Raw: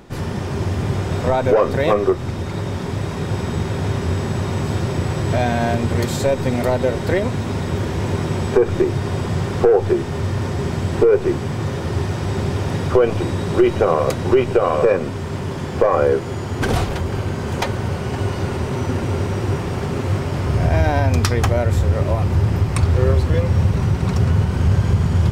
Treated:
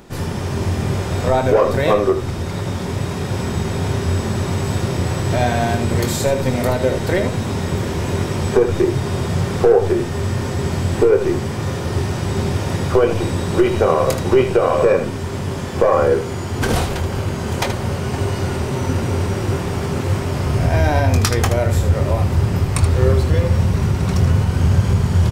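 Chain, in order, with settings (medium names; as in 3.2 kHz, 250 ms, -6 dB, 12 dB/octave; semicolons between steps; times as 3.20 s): treble shelf 5.9 kHz +7 dB; on a send: early reflections 23 ms -9 dB, 78 ms -9 dB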